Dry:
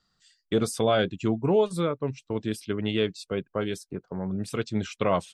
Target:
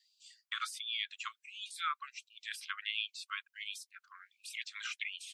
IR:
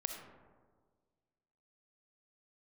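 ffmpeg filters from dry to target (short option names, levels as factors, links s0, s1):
-filter_complex "[0:a]acrossover=split=3000[s0][s1];[s1]acompressor=threshold=0.00447:ratio=4:attack=1:release=60[s2];[s0][s2]amix=inputs=2:normalize=0,afftfilt=real='re*gte(b*sr/1024,990*pow(2400/990,0.5+0.5*sin(2*PI*1.4*pts/sr)))':imag='im*gte(b*sr/1024,990*pow(2400/990,0.5+0.5*sin(2*PI*1.4*pts/sr)))':win_size=1024:overlap=0.75,volume=1.33"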